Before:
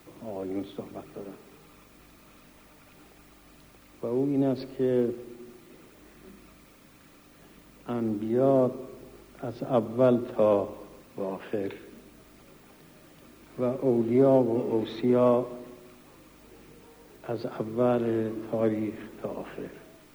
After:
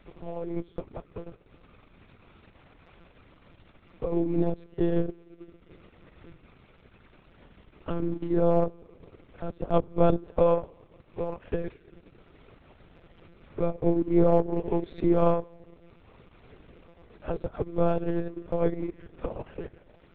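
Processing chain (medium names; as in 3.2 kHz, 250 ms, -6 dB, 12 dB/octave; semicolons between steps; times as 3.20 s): monotone LPC vocoder at 8 kHz 170 Hz; transient shaper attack +3 dB, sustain -11 dB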